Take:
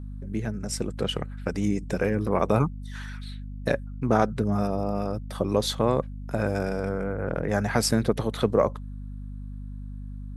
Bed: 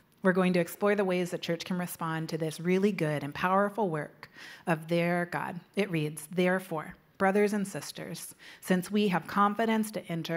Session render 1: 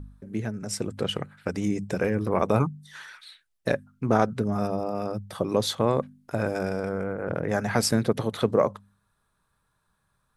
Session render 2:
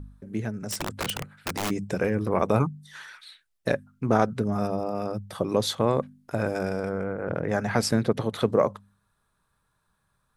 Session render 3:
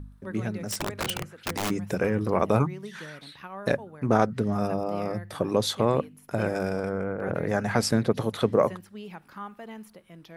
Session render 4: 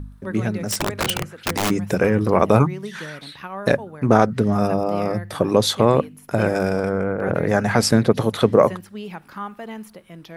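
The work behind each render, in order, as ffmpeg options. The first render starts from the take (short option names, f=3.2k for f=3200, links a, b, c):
-af "bandreject=f=50:t=h:w=4,bandreject=f=100:t=h:w=4,bandreject=f=150:t=h:w=4,bandreject=f=200:t=h:w=4,bandreject=f=250:t=h:w=4"
-filter_complex "[0:a]asplit=3[a][b][c];[a]afade=t=out:st=0.69:d=0.02[d];[b]aeval=exprs='(mod(13.3*val(0)+1,2)-1)/13.3':c=same,afade=t=in:st=0.69:d=0.02,afade=t=out:st=1.69:d=0.02[e];[c]afade=t=in:st=1.69:d=0.02[f];[d][e][f]amix=inputs=3:normalize=0,asettb=1/sr,asplit=3[g][h][i];[g]atrim=end=6.904[j];[h]atrim=start=6.9:end=8.34,asetpts=PTS-STARTPTS,afade=t=in:d=0.004:c=qsin,afade=t=out:st=1.436:d=0.004:c=qsin,highshelf=f=7.7k:g=-7.5[k];[i]atrim=start=8.336[l];[j][k]acrossfade=d=0.004:c1=hsin:c2=qsin[m];[m][l]acrossfade=d=0.004:c1=qsin:c2=hsin"
-filter_complex "[1:a]volume=-14dB[a];[0:a][a]amix=inputs=2:normalize=0"
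-af "volume=7.5dB,alimiter=limit=-1dB:level=0:latency=1"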